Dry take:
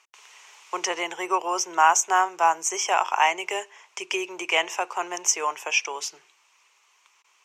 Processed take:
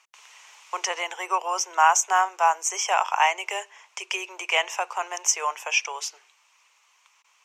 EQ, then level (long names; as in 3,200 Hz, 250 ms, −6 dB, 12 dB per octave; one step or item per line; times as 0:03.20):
high-pass filter 500 Hz 24 dB per octave
0.0 dB